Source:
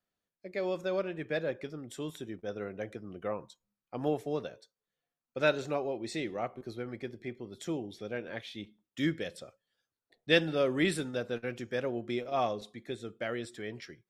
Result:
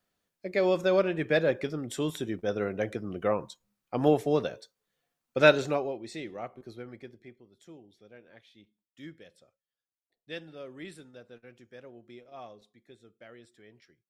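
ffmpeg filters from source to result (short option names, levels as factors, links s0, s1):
-af "volume=2.51,afade=t=out:st=5.48:d=0.54:silence=0.266073,afade=t=out:st=6.81:d=0.66:silence=0.266073"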